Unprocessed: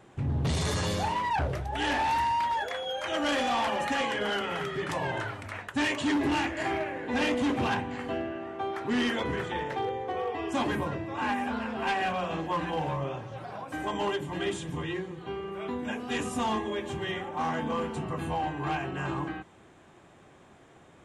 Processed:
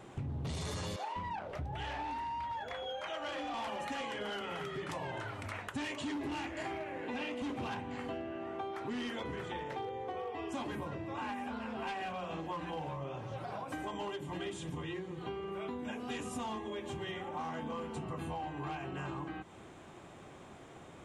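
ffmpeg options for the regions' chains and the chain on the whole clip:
ffmpeg -i in.wav -filter_complex "[0:a]asettb=1/sr,asplit=3[link_01][link_02][link_03];[link_01]atrim=end=0.964[link_04];[link_02]atrim=start=0.96:end=3.54,asetpts=PTS-STARTPTS,afade=type=in:duration=0.004:curve=qsin,afade=type=out:start_time=2.576:duration=0.004:curve=qsin,lowpass=frequency=3000:poles=1,acrossover=split=390[link_05][link_06];[link_05]adelay=200[link_07];[link_07][link_06]amix=inputs=2:normalize=0,atrim=end_sample=113778[link_08];[link_03]atrim=start=3.536[link_09];[link_04][link_08]acrossfade=duration=0.004:curve1=hsin:curve2=qsin[link_10];[link_10][link_09]acrossfade=duration=0.004:curve1=qsin:curve2=hsin,asettb=1/sr,asplit=3[link_11][link_12][link_13];[link_11]atrim=end=7.014[link_14];[link_12]atrim=start=7.01:end=7.42,asetpts=PTS-STARTPTS,afade=type=in:duration=0.004:curve=qsin,afade=type=out:start_time=0.406:duration=0.004:curve=qsin,acrossover=split=3900[link_15][link_16];[link_16]acompressor=threshold=-48dB:ratio=4:attack=1:release=60[link_17];[link_15][link_17]amix=inputs=2:normalize=0,highpass=frequency=150:poles=1,equalizer=frequency=2700:width=4.7:gain=5.5[link_18];[link_13]atrim=start=7.416[link_19];[link_14][link_18]acrossfade=duration=0.004:curve1=hsin:curve2=qsin[link_20];[link_20][link_19]acrossfade=duration=0.004:curve1=qsin:curve2=hsin,equalizer=frequency=1700:width_type=o:width=0.26:gain=-4,acompressor=threshold=-41dB:ratio=6,volume=3dB" out.wav

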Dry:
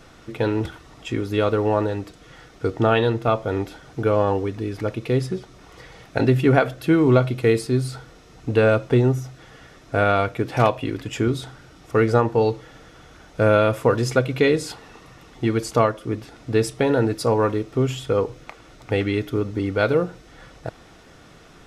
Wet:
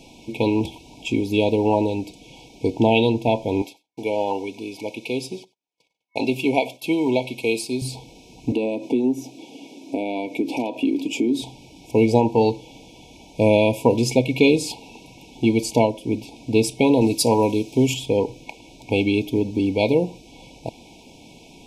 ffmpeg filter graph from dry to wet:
ffmpeg -i in.wav -filter_complex "[0:a]asettb=1/sr,asplit=3[link_01][link_02][link_03];[link_01]atrim=end=3.624[link_04];[link_02]atrim=start=3.62:end=7.82,asetpts=PTS-STARTPTS,afade=type=in:duration=0.004:curve=qsin,afade=type=out:start_time=4.196:duration=0.004:curve=qsin,agate=range=-44dB:threshold=-40dB:ratio=16:release=100:detection=peak,highpass=frequency=670:poles=1,aecho=1:1:94:0.0794,atrim=end_sample=185220[link_05];[link_03]atrim=start=7.816[link_06];[link_04][link_05]acrossfade=duration=0.004:curve1=hsin:curve2=qsin[link_07];[link_07][link_06]acrossfade=duration=0.004:curve1=qsin:curve2=hsin,asettb=1/sr,asplit=3[link_08][link_09][link_10];[link_08]atrim=end=8.524[link_11];[link_09]atrim=start=8.52:end=11.42,asetpts=PTS-STARTPTS,afade=type=in:duration=0.004:curve=qsin,afade=type=out:start_time=2.896:duration=0.004:curve=qsin,acompressor=threshold=-28dB:ratio=3:attack=3.2:release=140:knee=1:detection=peak,highpass=frequency=280:width_type=q:width=3[link_12];[link_10]atrim=start=11.416[link_13];[link_11][link_12]acrossfade=duration=0.004:curve1=hsin:curve2=qsin[link_14];[link_14][link_13]acrossfade=duration=0.004:curve1=qsin:curve2=hsin,asettb=1/sr,asplit=3[link_15][link_16][link_17];[link_15]atrim=end=17.014[link_18];[link_16]atrim=start=17.01:end=17.94,asetpts=PTS-STARTPTS,afade=type=in:duration=0.004:curve=qsin,afade=type=out:start_time=0.926:duration=0.004:curve=qsin,highpass=42,highshelf=frequency=3800:gain=9[link_19];[link_17]atrim=start=17.936[link_20];[link_18][link_19]acrossfade=duration=0.004:curve1=hsin:curve2=qsin[link_21];[link_21][link_20]acrossfade=duration=0.004:curve1=qsin:curve2=hsin,highshelf=frequency=2300:gain=8,afftfilt=real='re*(1-between(b*sr/4096,1000,2200))':imag='im*(1-between(b*sr/4096,1000,2200))':win_size=4096:overlap=0.75,equalizer=frequency=250:width_type=o:width=1:gain=10,equalizer=frequency=1000:width_type=o:width=1:gain=5,equalizer=frequency=2000:width_type=o:width=1:gain=7,volume=-3.5dB" out.wav

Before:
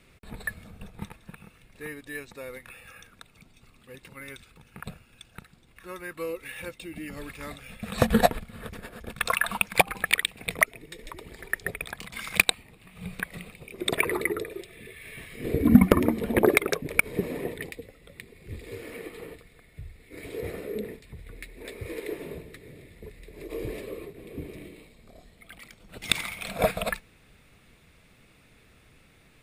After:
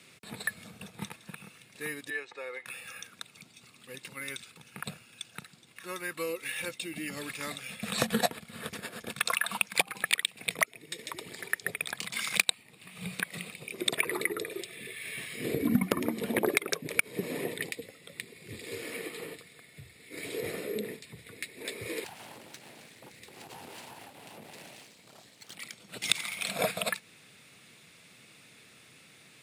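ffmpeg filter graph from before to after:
ffmpeg -i in.wav -filter_complex "[0:a]asettb=1/sr,asplit=3[link_01][link_02][link_03];[link_01]atrim=end=2.104[link_04];[link_02]atrim=start=2.1:end=2.66,asetpts=PTS-STARTPTS,afade=type=in:duration=0.004:curve=qsin,afade=type=out:start_time=0.556:duration=0.004:curve=qsin,lowpass=9300,acrossover=split=370 3000:gain=0.141 1 0.178[link_05][link_06][link_07];[link_05][link_06][link_07]amix=inputs=3:normalize=0,aecho=1:1:2.4:0.41,atrim=end_sample=24696[link_08];[link_03]atrim=start=2.656[link_09];[link_04][link_08]acrossfade=duration=0.004:curve1=hsin:curve2=qsin[link_10];[link_10][link_09]acrossfade=duration=0.004:curve1=qsin:curve2=hsin,asettb=1/sr,asplit=3[link_11][link_12][link_13];[link_11]atrim=end=22.044[link_14];[link_12]atrim=start=22.04:end=25.55,asetpts=PTS-STARTPTS,afade=type=in:duration=0.004:curve=qsin,afade=type=out:start_time=3.506:duration=0.004:curve=qsin,bandreject=frequency=60:width_type=h:width=6,bandreject=frequency=120:width_type=h:width=6,bandreject=frequency=180:width_type=h:width=6,acompressor=threshold=-41dB:ratio=3:attack=3.2:release=140:knee=1:detection=peak,aeval=exprs='abs(val(0))':channel_layout=same[link_15];[link_13]atrim=start=25.546[link_16];[link_14][link_15]acrossfade=duration=0.004:curve1=hsin:curve2=qsin[link_17];[link_17][link_16]acrossfade=duration=0.004:curve1=qsin:curve2=hsin,highpass=frequency=120:width=0.5412,highpass=frequency=120:width=1.3066,equalizer=frequency=6400:width=0.38:gain=10.5,acompressor=threshold=-29dB:ratio=2,volume=-1dB" out.wav

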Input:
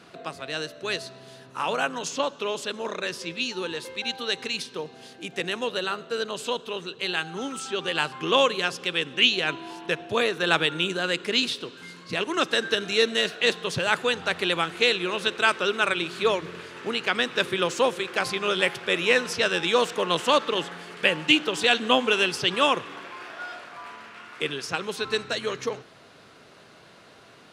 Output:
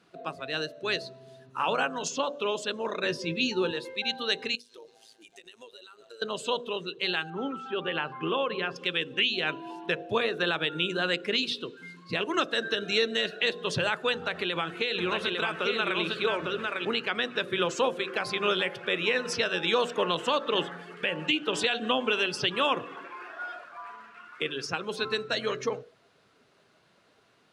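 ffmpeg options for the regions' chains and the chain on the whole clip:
ffmpeg -i in.wav -filter_complex "[0:a]asettb=1/sr,asplit=3[link_01][link_02][link_03];[link_01]atrim=end=3.034[link_04];[link_02]atrim=start=3.03:end=3.71,asetpts=PTS-STARTPTS,afade=type=in:duration=0.004:curve=qsin,afade=type=out:start_time=0.676:duration=0.004:curve=qsin,lowshelf=frequency=450:gain=7.5,asplit=2[link_05][link_06];[link_06]adelay=19,volume=-12dB[link_07];[link_05][link_07]amix=inputs=2:normalize=0,atrim=end_sample=29988[link_08];[link_03]atrim=start=3.706[link_09];[link_04][link_08]acrossfade=duration=0.004:curve1=hsin:curve2=qsin[link_10];[link_10][link_09]acrossfade=duration=0.004:curve1=qsin:curve2=hsin,asettb=1/sr,asplit=3[link_11][link_12][link_13];[link_11]atrim=end=4.554[link_14];[link_12]atrim=start=4.55:end=6.22,asetpts=PTS-STARTPTS,afade=type=in:duration=0.004:curve=qsin,afade=type=out:start_time=1.666:duration=0.004:curve=qsin,bass=frequency=250:gain=-11,treble=frequency=4000:gain=13,acompressor=threshold=-36dB:ratio=20:attack=3.2:release=140:knee=1:detection=peak,tremolo=f=110:d=0.788[link_15];[link_13]atrim=start=6.216[link_16];[link_14][link_15]acrossfade=duration=0.004:curve1=hsin:curve2=qsin[link_17];[link_17][link_16]acrossfade=duration=0.004:curve1=qsin:curve2=hsin,asettb=1/sr,asplit=3[link_18][link_19][link_20];[link_18]atrim=end=7.304[link_21];[link_19]atrim=start=7.3:end=8.76,asetpts=PTS-STARTPTS,afade=type=in:duration=0.004:curve=qsin,afade=type=out:start_time=1.456:duration=0.004:curve=qsin,lowpass=2800,acompressor=threshold=-24dB:ratio=4:attack=3.2:release=140:knee=1:detection=peak[link_22];[link_20]atrim=start=8.756[link_23];[link_21][link_22]acrossfade=duration=0.004:curve1=hsin:curve2=qsin[link_24];[link_24][link_23]acrossfade=duration=0.004:curve1=qsin:curve2=hsin,asettb=1/sr,asplit=3[link_25][link_26][link_27];[link_25]atrim=end=14.134[link_28];[link_26]atrim=start=14.13:end=16.85,asetpts=PTS-STARTPTS,afade=type=in:duration=0.004:curve=qsin,afade=type=out:start_time=2.716:duration=0.004:curve=qsin,acompressor=threshold=-23dB:ratio=6:attack=3.2:release=140:knee=1:detection=peak,aecho=1:1:852:0.708,atrim=end_sample=119952[link_29];[link_27]atrim=start=16.846[link_30];[link_28][link_29]acrossfade=duration=0.004:curve1=hsin:curve2=qsin[link_31];[link_31][link_30]acrossfade=duration=0.004:curve1=qsin:curve2=hsin,bandreject=frequency=48.19:width_type=h:width=4,bandreject=frequency=96.38:width_type=h:width=4,bandreject=frequency=144.57:width_type=h:width=4,bandreject=frequency=192.76:width_type=h:width=4,bandreject=frequency=240.95:width_type=h:width=4,bandreject=frequency=289.14:width_type=h:width=4,bandreject=frequency=337.33:width_type=h:width=4,bandreject=frequency=385.52:width_type=h:width=4,bandreject=frequency=433.71:width_type=h:width=4,bandreject=frequency=481.9:width_type=h:width=4,bandreject=frequency=530.09:width_type=h:width=4,bandreject=frequency=578.28:width_type=h:width=4,bandreject=frequency=626.47:width_type=h:width=4,bandreject=frequency=674.66:width_type=h:width=4,bandreject=frequency=722.85:width_type=h:width=4,alimiter=limit=-14dB:level=0:latency=1:release=203,afftdn=noise_reduction=13:noise_floor=-39" out.wav

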